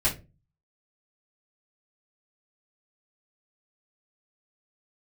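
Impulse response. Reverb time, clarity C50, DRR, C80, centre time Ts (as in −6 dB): non-exponential decay, 12.5 dB, −9.5 dB, 20.0 dB, 18 ms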